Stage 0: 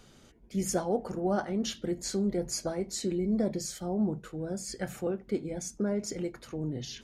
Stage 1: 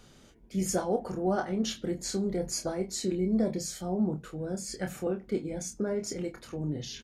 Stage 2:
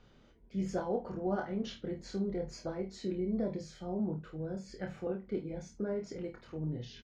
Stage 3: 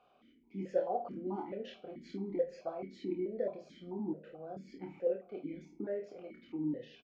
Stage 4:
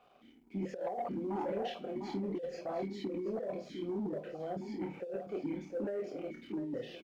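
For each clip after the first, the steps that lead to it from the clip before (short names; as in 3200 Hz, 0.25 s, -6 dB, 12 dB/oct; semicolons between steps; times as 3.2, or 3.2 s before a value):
doubler 27 ms -6.5 dB
air absorption 200 m; on a send: early reflections 25 ms -7.5 dB, 51 ms -12.5 dB; on the sum: gain -5.5 dB
doubler 30 ms -13 dB; on a send at -15 dB: reverb RT60 1.0 s, pre-delay 7 ms; on the sum: vowel sequencer 4.6 Hz; gain +9.5 dB
echo 0.702 s -10.5 dB; negative-ratio compressor -39 dBFS, ratio -1; sample leveller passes 1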